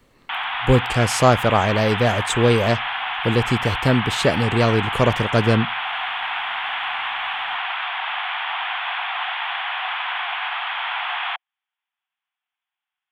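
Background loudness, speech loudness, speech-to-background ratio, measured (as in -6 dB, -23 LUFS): -24.5 LUFS, -20.0 LUFS, 4.5 dB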